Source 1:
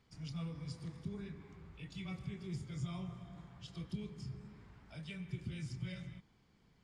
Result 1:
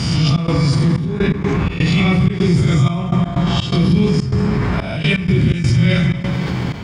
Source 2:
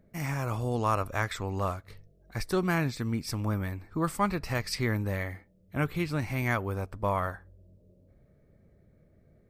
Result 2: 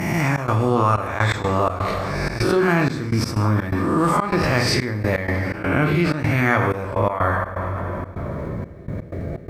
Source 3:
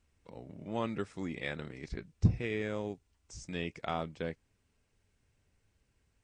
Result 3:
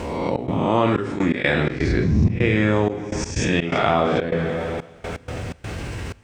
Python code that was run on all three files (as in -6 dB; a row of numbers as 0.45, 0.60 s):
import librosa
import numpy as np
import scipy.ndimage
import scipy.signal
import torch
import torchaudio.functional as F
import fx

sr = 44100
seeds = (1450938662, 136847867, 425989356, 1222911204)

y = fx.spec_swells(x, sr, rise_s=0.64)
y = scipy.signal.sosfilt(scipy.signal.butter(2, 60.0, 'highpass', fs=sr, output='sos'), y)
y = fx.rev_double_slope(y, sr, seeds[0], early_s=0.78, late_s=2.8, knee_db=-18, drr_db=4.0)
y = fx.step_gate(y, sr, bpm=125, pattern='xxx.xxxx..x.xx.x', floor_db=-24.0, edge_ms=4.5)
y = fx.lowpass(y, sr, hz=3000.0, slope=6)
y = fx.env_flatten(y, sr, amount_pct=70)
y = librosa.util.normalize(y) * 10.0 ** (-3 / 20.0)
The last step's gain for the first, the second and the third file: +23.0, +4.5, +5.0 dB